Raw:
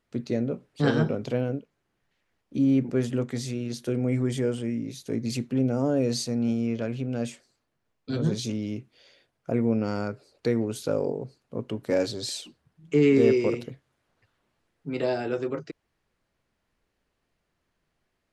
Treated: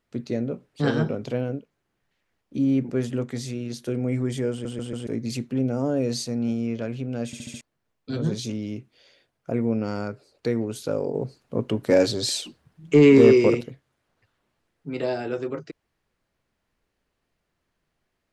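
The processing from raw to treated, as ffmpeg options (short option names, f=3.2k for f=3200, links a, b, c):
-filter_complex "[0:a]asettb=1/sr,asplit=3[a][b][c];[a]atrim=end=11.144[d];[b]atrim=start=11.14:end=13.61,asetpts=PTS-STARTPTS,afade=t=in:d=0.004:c=qsin,afade=t=out:st=2.466:d=0.004:c=qsin,acontrast=73[e];[c]atrim=start=13.606[f];[d][e]acrossfade=d=0.004:c1=hsin:c2=qsin[g];[g][f]acrossfade=d=0.004:c1=qsin:c2=hsin,asplit=10[h][i][j][k][l][m][n][o][p][q];[h]atrim=end=4.652[r];[i]atrim=start=4.508:end=4.652[s];[j]atrim=start=4.508:end=4.652[t];[k]atrim=start=4.508:end=4.652[u];[l]atrim=start=5.068:end=7.332[v];[m]atrim=start=7.258:end=7.332[w];[n]atrim=start=7.258:end=7.332[x];[o]atrim=start=7.258:end=7.332[y];[p]atrim=start=7.258:end=7.332[z];[q]atrim=start=7.608[aa];[r][s]acrossfade=d=0.004:c1=hsin:c2=hsin[ab];[ab][t]acrossfade=d=0.004:c1=hsin:c2=hsin[ac];[ac][u]acrossfade=d=0.004:c1=hsin:c2=hsin[ad];[ad][v]acrossfade=d=0.004:c1=hsin:c2=hsin[ae];[ae][w]acrossfade=d=0.004:c1=hsin:c2=hsin[af];[af][x]acrossfade=d=0.004:c1=hsin:c2=hsin[ag];[ag][y]acrossfade=d=0.004:c1=hsin:c2=hsin[ah];[ah][z]acrossfade=d=0.004:c1=hsin:c2=hsin[ai];[ai][aa]acrossfade=d=0.004:c1=hsin:c2=hsin"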